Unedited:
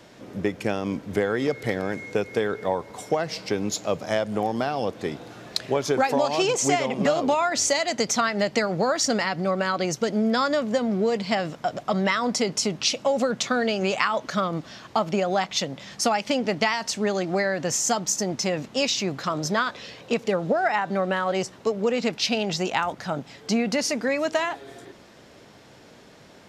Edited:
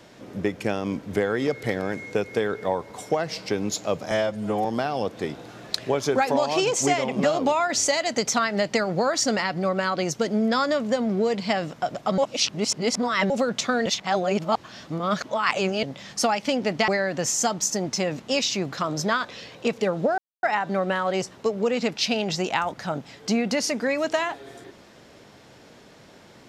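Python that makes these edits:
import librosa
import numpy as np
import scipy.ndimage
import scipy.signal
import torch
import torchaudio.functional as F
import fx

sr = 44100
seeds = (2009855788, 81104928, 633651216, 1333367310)

y = fx.edit(x, sr, fx.stretch_span(start_s=4.11, length_s=0.36, factor=1.5),
    fx.reverse_span(start_s=12.0, length_s=1.12),
    fx.reverse_span(start_s=13.68, length_s=1.97),
    fx.cut(start_s=16.7, length_s=0.64),
    fx.insert_silence(at_s=20.64, length_s=0.25), tone=tone)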